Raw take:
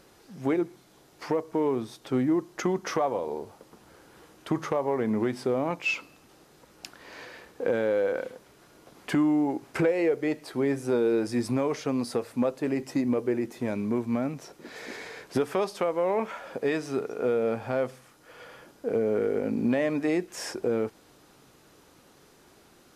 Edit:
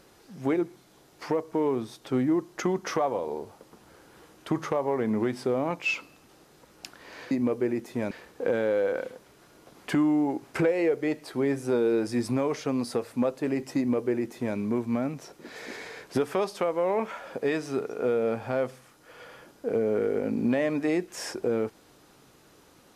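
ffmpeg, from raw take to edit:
-filter_complex "[0:a]asplit=3[a][b][c];[a]atrim=end=7.312[d];[b]atrim=start=12.968:end=13.772[e];[c]atrim=start=7.308[f];[d][e]acrossfade=d=0.004:c1=hsin:c2=hsin[g];[g][f]acrossfade=d=0.004:c1=hsin:c2=hsin"

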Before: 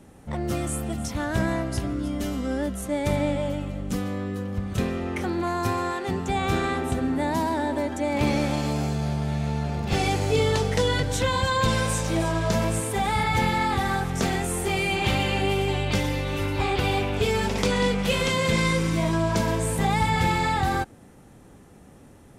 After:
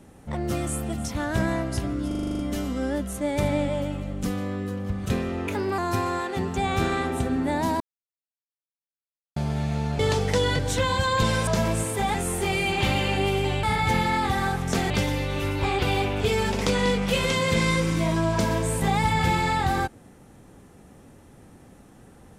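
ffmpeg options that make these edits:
-filter_complex "[0:a]asplit=18[a][b][c][d][e][f][g][h][i][j][k][l][m][n][o][p][q][r];[a]atrim=end=2.112[s];[b]atrim=start=2.068:end=2.112[t];[c]atrim=start=2.068:end=2.112[u];[d]atrim=start=2.068:end=2.112[v];[e]atrim=start=2.068:end=2.112[w];[f]atrim=start=2.068:end=2.112[x];[g]atrim=start=2.068:end=2.112[y];[h]atrim=start=2.068:end=2.112[z];[i]atrim=start=2.068:end=5.154[aa];[j]atrim=start=5.15:end=5.5,asetpts=PTS-STARTPTS,asetrate=49392,aresample=44100,atrim=end_sample=13781,asetpts=PTS-STARTPTS[ab];[k]atrim=start=5.496:end=7.52,asetpts=PTS-STARTPTS,afade=t=out:st=2.02:d=0.004:c=hsin[ac];[l]atrim=start=7.52:end=9.08,asetpts=PTS-STARTPTS,volume=0[ad];[m]atrim=start=9.08:end=9.712,asetpts=PTS-STARTPTS,afade=t=in:d=0.004:c=hsin[ae];[n]atrim=start=10.428:end=11.912[af];[o]atrim=start=12.438:end=13.112[ag];[p]atrim=start=14.378:end=15.872[ah];[q]atrim=start=13.108:end=14.382[ai];[r]atrim=start=15.868[aj];[s][t]acrossfade=d=0.004:c1=hsin:c2=hsin[ak];[ak][u]acrossfade=d=0.004:c1=hsin:c2=hsin[al];[al][v]acrossfade=d=0.004:c1=hsin:c2=hsin[am];[am][w]acrossfade=d=0.004:c1=hsin:c2=hsin[an];[an][x]acrossfade=d=0.004:c1=hsin:c2=hsin[ao];[ao][y]acrossfade=d=0.004:c1=hsin:c2=hsin[ap];[ap][z]acrossfade=d=0.004:c1=hsin:c2=hsin[aq];[aq][aa]acrossfade=d=0.004:c1=hsin:c2=hsin[ar];[ar][ab]acrossfade=d=0.004:c1=hsin:c2=hsin[as];[ac][ad][ae]concat=n=3:v=0:a=1[at];[as][at]acrossfade=d=0.004:c1=hsin:c2=hsin[au];[au][af]acrossfade=d=0.004:c1=hsin:c2=hsin[av];[av][ag]acrossfade=d=0.004:c1=hsin:c2=hsin[aw];[aw][ah]acrossfade=d=0.004:c1=hsin:c2=hsin[ax];[ax][ai]acrossfade=d=0.004:c1=hsin:c2=hsin[ay];[ay][aj]acrossfade=d=0.004:c1=hsin:c2=hsin"

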